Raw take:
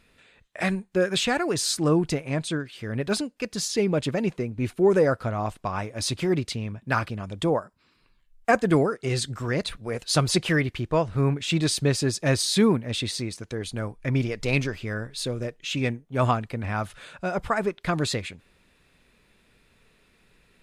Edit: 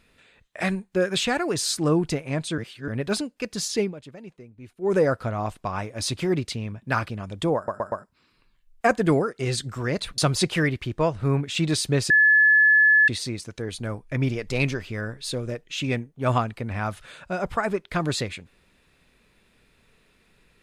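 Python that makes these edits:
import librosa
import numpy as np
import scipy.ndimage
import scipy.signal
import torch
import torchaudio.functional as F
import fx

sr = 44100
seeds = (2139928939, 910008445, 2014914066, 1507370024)

y = fx.edit(x, sr, fx.reverse_span(start_s=2.58, length_s=0.3),
    fx.fade_down_up(start_s=3.81, length_s=1.13, db=-16.5, fade_s=0.13),
    fx.stutter(start_s=7.56, slice_s=0.12, count=4),
    fx.cut(start_s=9.82, length_s=0.29),
    fx.bleep(start_s=12.03, length_s=0.98, hz=1720.0, db=-13.0), tone=tone)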